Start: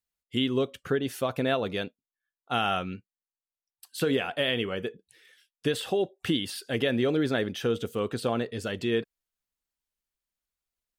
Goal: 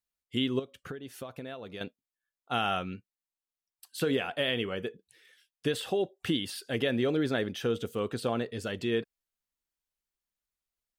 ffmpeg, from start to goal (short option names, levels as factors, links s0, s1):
-filter_complex "[0:a]asettb=1/sr,asplit=3[s0][s1][s2];[s0]atrim=end=0.594[s3];[s1]atrim=start=0.59:end=1.81,asetpts=PTS-STARTPTS,afade=t=in:d=0.004:c=qsin,afade=t=out:st=1.216:d=0.004:c=qsin,acompressor=threshold=0.0158:ratio=6[s4];[s2]atrim=start=1.806[s5];[s3][s4]acrossfade=d=0.004:c1=hsin:c2=qsin[s6];[s6][s5]acrossfade=d=0.004:c1=qsin:c2=hsin,volume=0.75"